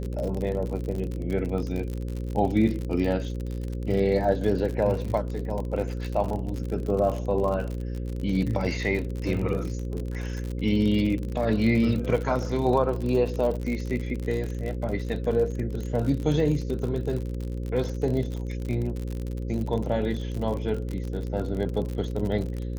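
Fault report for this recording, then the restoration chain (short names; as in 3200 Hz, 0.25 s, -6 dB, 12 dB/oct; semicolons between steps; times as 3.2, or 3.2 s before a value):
buzz 60 Hz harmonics 9 -31 dBFS
crackle 54/s -30 dBFS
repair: de-click; de-hum 60 Hz, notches 9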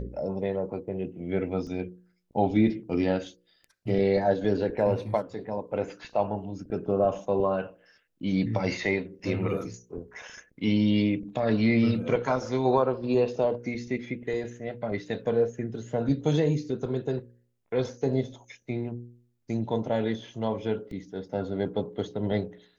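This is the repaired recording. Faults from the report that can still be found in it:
none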